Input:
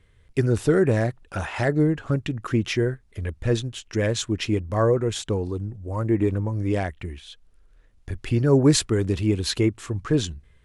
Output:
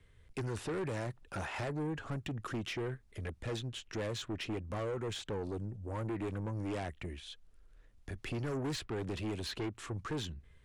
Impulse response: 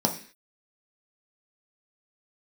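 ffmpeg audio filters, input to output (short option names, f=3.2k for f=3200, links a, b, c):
-filter_complex "[0:a]acrossover=split=130|740|4000[a][b][c][d];[a]acompressor=threshold=-39dB:ratio=4[e];[b]acompressor=threshold=-25dB:ratio=4[f];[c]acompressor=threshold=-34dB:ratio=4[g];[d]acompressor=threshold=-47dB:ratio=4[h];[e][f][g][h]amix=inputs=4:normalize=0,asoftclip=type=tanh:threshold=-28.5dB,volume=-4.5dB"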